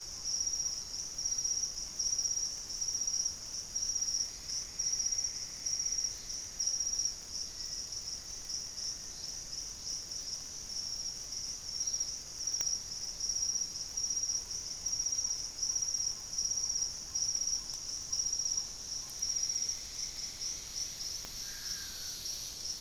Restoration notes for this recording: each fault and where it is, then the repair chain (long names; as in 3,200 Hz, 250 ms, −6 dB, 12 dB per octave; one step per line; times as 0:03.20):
surface crackle 56 per second −41 dBFS
0:12.61: click −18 dBFS
0:21.25: click −25 dBFS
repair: click removal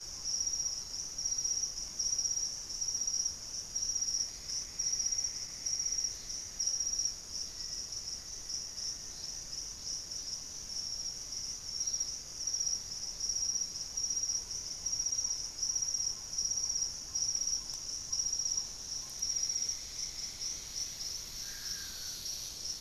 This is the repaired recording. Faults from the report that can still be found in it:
0:12.61: click
0:21.25: click